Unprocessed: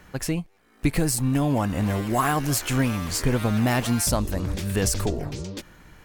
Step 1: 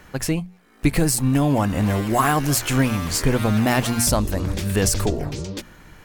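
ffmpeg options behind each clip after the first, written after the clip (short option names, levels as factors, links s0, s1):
-af "bandreject=f=60:t=h:w=6,bandreject=f=120:t=h:w=6,bandreject=f=180:t=h:w=6,bandreject=f=240:t=h:w=6,volume=1.58"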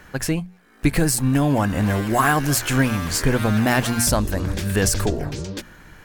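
-af "equalizer=f=1600:t=o:w=0.28:g=6"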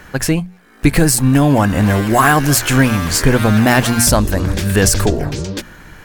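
-af "apsyclip=2.66,volume=0.841"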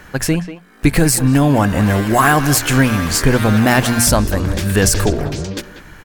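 -filter_complex "[0:a]asplit=2[s0][s1];[s1]adelay=190,highpass=300,lowpass=3400,asoftclip=type=hard:threshold=0.316,volume=0.282[s2];[s0][s2]amix=inputs=2:normalize=0,volume=0.891"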